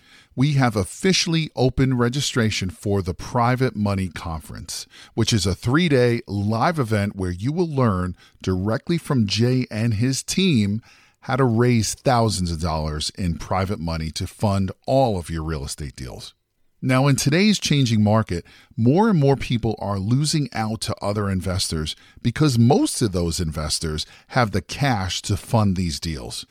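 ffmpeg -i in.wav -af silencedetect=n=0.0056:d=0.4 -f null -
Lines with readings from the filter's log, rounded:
silence_start: 16.31
silence_end: 16.82 | silence_duration: 0.51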